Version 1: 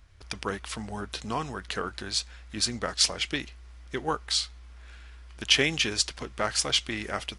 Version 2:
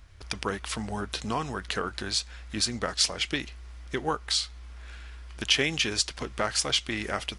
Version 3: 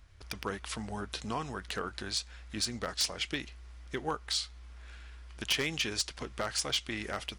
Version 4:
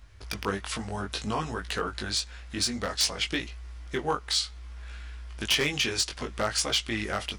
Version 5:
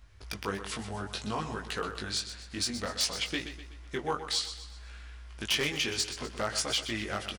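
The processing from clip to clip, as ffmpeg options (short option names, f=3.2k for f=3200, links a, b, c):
-af "acompressor=threshold=-34dB:ratio=1.5,volume=4dB"
-af "aeval=exprs='0.168*(abs(mod(val(0)/0.168+3,4)-2)-1)':c=same,volume=-5.5dB"
-af "flanger=delay=17.5:depth=3.8:speed=0.59,volume=8.5dB"
-af "aecho=1:1:125|250|375|500|625:0.282|0.127|0.0571|0.0257|0.0116,volume=-4dB"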